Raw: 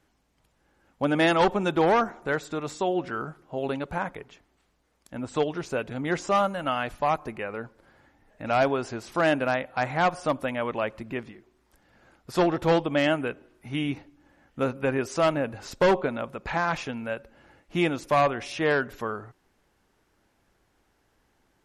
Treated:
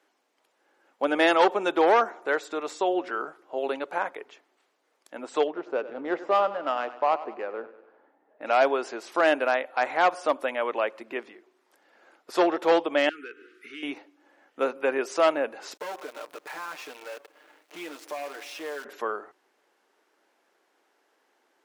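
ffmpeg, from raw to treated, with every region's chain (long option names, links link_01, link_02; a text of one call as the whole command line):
ffmpeg -i in.wav -filter_complex "[0:a]asettb=1/sr,asplit=3[link_01][link_02][link_03];[link_01]atrim=end=5.474[link_04];[link_02]atrim=start=5.47:end=8.42,asetpts=PTS-STARTPTS,afade=type=in:duration=0.004:curve=qsin,afade=type=out:start_time=2.946:duration=0.004:curve=qsin,equalizer=frequency=2100:width=1.4:gain=-4,adynamicsmooth=sensitivity=1:basefreq=1600,aecho=1:1:97|194|291|388|485:0.178|0.0942|0.05|0.0265|0.014,atrim=end_sample=130095[link_05];[link_03]atrim=start=8.416[link_06];[link_04][link_05]acrossfade=duration=0.004:curve1=hsin:curve2=qsin[link_07];[link_07][link_06]acrossfade=duration=0.004:curve1=qsin:curve2=hsin,asettb=1/sr,asplit=3[link_08][link_09][link_10];[link_08]atrim=end=13.094[link_11];[link_09]atrim=start=13.09:end=13.83,asetpts=PTS-STARTPTS,afade=type=in:duration=0.004:curve=qsin,afade=type=out:start_time=0.736:duration=0.004:curve=qsin,asplit=2[link_12][link_13];[link_13]highpass=frequency=720:poles=1,volume=17dB,asoftclip=type=tanh:threshold=-12.5dB[link_14];[link_12][link_14]amix=inputs=2:normalize=0,lowpass=frequency=2500:poles=1,volume=-6dB,acompressor=threshold=-40dB:ratio=3:attack=3.2:release=140:knee=1:detection=peak,asuperstop=centerf=760:order=12:qfactor=0.94[link_15];[link_10]atrim=start=13.826[link_16];[link_11][link_15]acrossfade=duration=0.004:curve1=hsin:curve2=qsin[link_17];[link_17][link_16]acrossfade=duration=0.004:curve1=qsin:curve2=hsin,asettb=1/sr,asplit=3[link_18][link_19][link_20];[link_18]atrim=end=15.744[link_21];[link_19]atrim=start=15.74:end=18.85,asetpts=PTS-STARTPTS,afade=type=in:duration=0.004:curve=qsin,afade=type=out:start_time=3.106:duration=0.004:curve=qsin,aecho=1:1:6.6:0.97,atrim=end_sample=137151,acompressor=threshold=-42dB:ratio=2.5:attack=3.2:release=140:knee=1:detection=peak,acrusher=bits=8:dc=4:mix=0:aa=0.000001[link_22];[link_20]atrim=start=18.846[link_23];[link_21][link_22]acrossfade=duration=0.004:curve1=hsin:curve2=qsin[link_24];[link_24][link_23]acrossfade=duration=0.004:curve1=qsin:curve2=hsin,highpass=frequency=340:width=0.5412,highpass=frequency=340:width=1.3066,highshelf=frequency=6100:gain=-5.5,volume=2dB" out.wav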